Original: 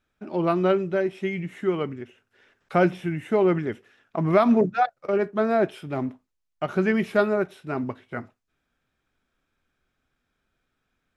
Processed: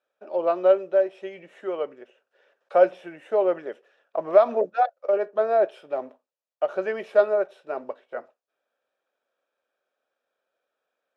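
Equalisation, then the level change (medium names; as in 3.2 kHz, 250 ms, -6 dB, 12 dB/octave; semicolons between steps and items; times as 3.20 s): resonant high-pass 550 Hz, resonance Q 4.9; distance through air 51 m; band-stop 2.1 kHz, Q 8.9; -5.5 dB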